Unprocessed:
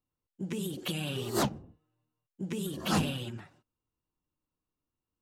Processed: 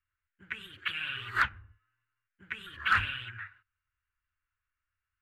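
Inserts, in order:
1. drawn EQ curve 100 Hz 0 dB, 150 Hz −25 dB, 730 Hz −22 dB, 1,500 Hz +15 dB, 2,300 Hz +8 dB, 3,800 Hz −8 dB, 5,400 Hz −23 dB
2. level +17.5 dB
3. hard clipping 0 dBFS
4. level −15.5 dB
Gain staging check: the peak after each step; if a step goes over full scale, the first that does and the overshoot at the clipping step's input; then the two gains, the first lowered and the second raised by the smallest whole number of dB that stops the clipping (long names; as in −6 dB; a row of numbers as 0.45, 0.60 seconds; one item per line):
−14.0, +3.5, 0.0, −15.5 dBFS
step 2, 3.5 dB
step 2 +13.5 dB, step 4 −11.5 dB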